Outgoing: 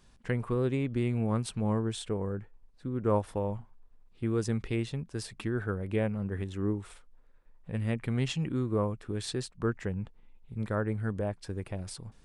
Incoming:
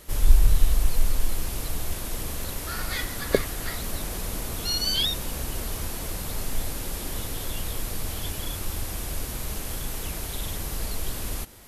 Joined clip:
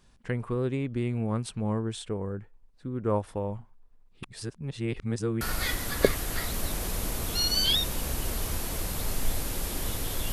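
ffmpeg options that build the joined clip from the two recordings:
ffmpeg -i cue0.wav -i cue1.wav -filter_complex "[0:a]apad=whole_dur=10.32,atrim=end=10.32,asplit=2[link_01][link_02];[link_01]atrim=end=4.232[link_03];[link_02]atrim=start=4.228:end=5.412,asetpts=PTS-STARTPTS,areverse[link_04];[1:a]atrim=start=2.708:end=7.62[link_05];[link_03][link_04]acrossfade=duration=0.004:curve1=hsin:curve2=hsin[link_06];[link_06][link_05]acrossfade=duration=0.004:curve1=hsin:curve2=hsin" out.wav

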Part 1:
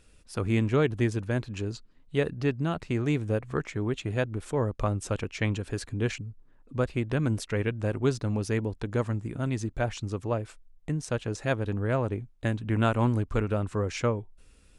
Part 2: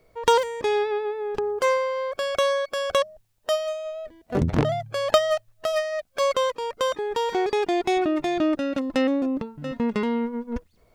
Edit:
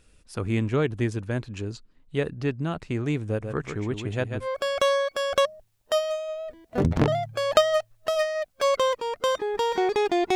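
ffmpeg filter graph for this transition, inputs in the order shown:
ffmpeg -i cue0.wav -i cue1.wav -filter_complex "[0:a]asettb=1/sr,asplit=3[link_01][link_02][link_03];[link_01]atrim=end=3.274[link_04];[link_02]atrim=start=3.27:end=4.48,asetpts=PTS-STARTPTS,afade=type=in:duration=0.004:curve=qsin,afade=type=out:start_time=1.206:duration=0.004:curve=qsin,aecho=1:1:141:0.447,atrim=end_sample=53361[link_05];[link_03]atrim=start=4.476[link_06];[link_04][link_05]acrossfade=duration=0.004:curve1=hsin:curve2=qsin[link_07];[link_07][link_06]acrossfade=duration=0.004:curve1=qsin:curve2=hsin,apad=whole_dur=10.35,atrim=end=10.35,atrim=end=4.48,asetpts=PTS-STARTPTS[link_08];[1:a]atrim=start=1.97:end=7.92,asetpts=PTS-STARTPTS[link_09];[link_08][link_09]acrossfade=duration=0.08:curve1=tri:curve2=tri" out.wav

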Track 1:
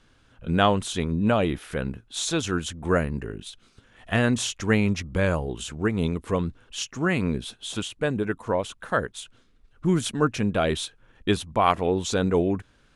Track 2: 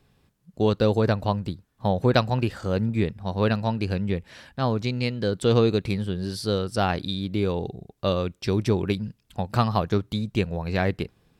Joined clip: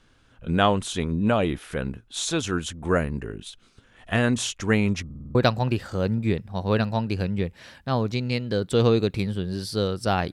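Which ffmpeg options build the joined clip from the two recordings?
ffmpeg -i cue0.wav -i cue1.wav -filter_complex "[0:a]apad=whole_dur=10.32,atrim=end=10.32,asplit=6[link_01][link_02][link_03][link_04][link_05][link_06];[link_01]atrim=end=5.102[link_07];[link_02]atrim=start=5.048:end=5.102[link_08];[link_03]atrim=start=5.048:end=5.102[link_09];[link_04]atrim=start=5.048:end=5.102[link_10];[link_05]atrim=start=5.048:end=5.102[link_11];[link_06]atrim=start=5.048:end=5.102[link_12];[1:a]atrim=start=2.058:end=7.03[link_13];[link_07][link_08]acrossfade=duration=0.004:curve1=hsin:curve2=hsin[link_14];[link_14][link_09]acrossfade=duration=0.004:curve1=hsin:curve2=hsin[link_15];[link_15][link_10]acrossfade=duration=0.004:curve1=hsin:curve2=hsin[link_16];[link_16][link_11]acrossfade=duration=0.004:curve1=hsin:curve2=hsin[link_17];[link_17][link_12]acrossfade=duration=0.004:curve1=hsin:curve2=hsin[link_18];[link_18][link_13]acrossfade=duration=0.004:curve1=hsin:curve2=hsin" out.wav

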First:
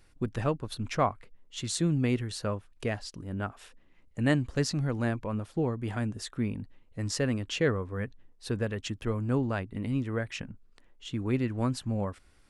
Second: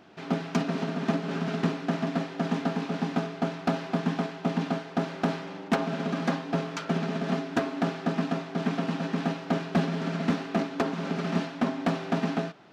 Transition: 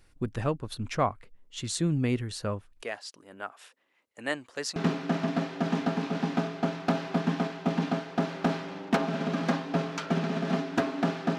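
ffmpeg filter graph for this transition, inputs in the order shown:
ffmpeg -i cue0.wav -i cue1.wav -filter_complex "[0:a]asettb=1/sr,asplit=3[link_01][link_02][link_03];[link_01]atrim=end=2.824[link_04];[link_02]atrim=start=2.82:end=4.76,asetpts=PTS-STARTPTS,afade=type=in:duration=0.004:curve=qsin,afade=type=out:start_time=1.936:duration=0.004:curve=qsin,highpass=540[link_05];[link_03]atrim=start=4.756[link_06];[link_04][link_05]acrossfade=duration=0.004:curve1=hsin:curve2=qsin[link_07];[link_07][link_06]acrossfade=duration=0.004:curve1=qsin:curve2=hsin,apad=whole_dur=11.38,atrim=end=11.38,atrim=end=4.762[link_08];[1:a]atrim=start=1.548:end=8.17[link_09];[link_08][link_09]acrossfade=duration=0.004:curve1=hsin:curve2=hsin" out.wav

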